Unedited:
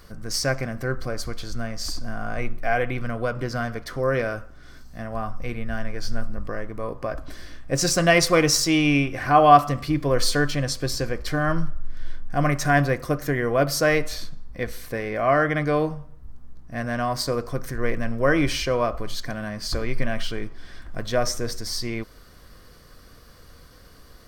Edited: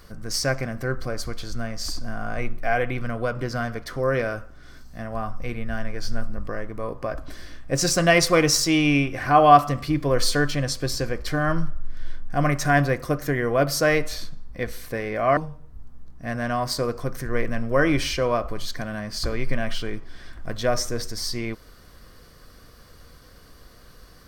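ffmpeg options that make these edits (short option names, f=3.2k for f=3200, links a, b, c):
-filter_complex "[0:a]asplit=2[a][b];[a]atrim=end=15.372[c];[b]atrim=start=15.858[d];[c][d]acrossfade=d=0.004:c1=hsin:c2=hsin"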